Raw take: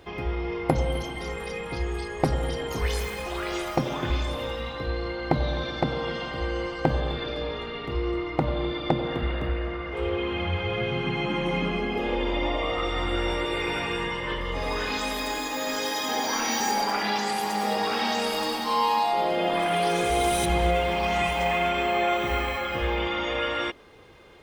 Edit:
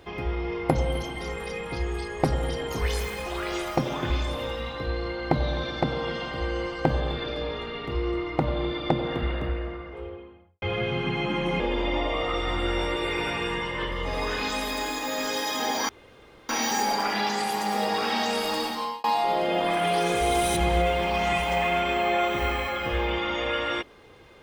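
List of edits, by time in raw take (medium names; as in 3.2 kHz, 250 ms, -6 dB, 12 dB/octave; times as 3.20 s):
9.21–10.62 s: studio fade out
11.60–12.09 s: delete
16.38 s: insert room tone 0.60 s
18.56–18.93 s: fade out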